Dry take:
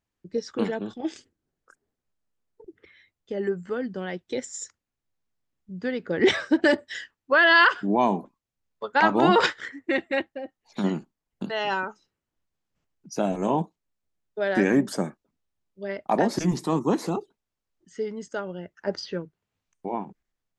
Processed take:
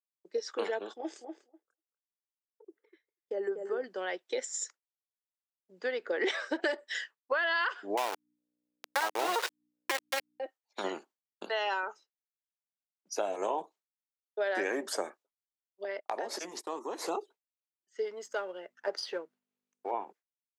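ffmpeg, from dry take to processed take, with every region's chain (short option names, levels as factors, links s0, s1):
-filter_complex "[0:a]asettb=1/sr,asplit=3[s0][s1][s2];[s0]atrim=end=0.934[s3];[s1]atrim=start=0.93:end=3.84,asetpts=PTS-STARTPTS,afade=t=in:d=0.004:c=qsin,afade=t=out:st=2.906:d=0.004:c=qsin,equalizer=f=3000:w=0.65:g=-11.5,asplit=2[s4][s5];[s5]adelay=244,lowpass=f=1300:p=1,volume=0.531,asplit=2[s6][s7];[s7]adelay=244,lowpass=f=1300:p=1,volume=0.2,asplit=2[s8][s9];[s9]adelay=244,lowpass=f=1300:p=1,volume=0.2[s10];[s4][s6][s8][s10]amix=inputs=4:normalize=0,atrim=end_sample=128331[s11];[s2]atrim=start=3.836[s12];[s3][s11]acrossfade=d=0.004:c1=hsin:c2=qsin[s13];[s13][s12]acrossfade=d=0.004:c1=qsin:c2=hsin,asettb=1/sr,asplit=3[s14][s15][s16];[s14]atrim=end=7.974[s17];[s15]atrim=start=7.97:end=10.4,asetpts=PTS-STARTPTS,afade=t=in:d=0.004:c=qsin,afade=t=out:st=2.426:d=0.004:c=qsin,aeval=exprs='val(0)*gte(abs(val(0)),0.106)':c=same,aeval=exprs='val(0)+0.00316*(sin(2*PI*60*n/s)+sin(2*PI*2*60*n/s)/2+sin(2*PI*3*60*n/s)/3+sin(2*PI*4*60*n/s)/4+sin(2*PI*5*60*n/s)/5)':c=same[s18];[s16]atrim=start=10.396[s19];[s17][s18]acrossfade=d=0.004:c1=hsin:c2=qsin[s20];[s20][s19]acrossfade=d=0.004:c1=qsin:c2=hsin,asettb=1/sr,asplit=3[s21][s22][s23];[s21]atrim=end=15.844[s24];[s22]atrim=start=15.84:end=17.02,asetpts=PTS-STARTPTS,afade=t=in:d=0.004:c=qsin,afade=t=out:st=1.176:d=0.004:c=qsin,agate=range=0.0794:threshold=0.0126:ratio=16:release=100:detection=peak,acompressor=threshold=0.0316:ratio=4:attack=3.2:release=140:knee=1:detection=peak[s25];[s23]atrim=start=17.016[s26];[s24][s25]acrossfade=d=0.004:c1=hsin:c2=qsin[s27];[s27][s26]acrossfade=d=0.004:c1=qsin:c2=hsin,asettb=1/sr,asplit=3[s28][s29][s30];[s28]atrim=end=18.054[s31];[s29]atrim=start=18.05:end=19.91,asetpts=PTS-STARTPTS,afade=t=in:d=0.004:c=qsin,afade=t=out:st=1.856:d=0.004:c=qsin,aeval=exprs='if(lt(val(0),0),0.708*val(0),val(0))':c=same,aeval=exprs='val(0)+0.00282*(sin(2*PI*50*n/s)+sin(2*PI*2*50*n/s)/2+sin(2*PI*3*50*n/s)/3+sin(2*PI*4*50*n/s)/4+sin(2*PI*5*50*n/s)/5)':c=same[s32];[s30]atrim=start=19.906[s33];[s31][s32]acrossfade=d=0.004:c1=hsin:c2=qsin[s34];[s34][s33]acrossfade=d=0.004:c1=qsin:c2=hsin,agate=range=0.0224:threshold=0.00631:ratio=3:detection=peak,highpass=f=420:w=0.5412,highpass=f=420:w=1.3066,acompressor=threshold=0.0398:ratio=6"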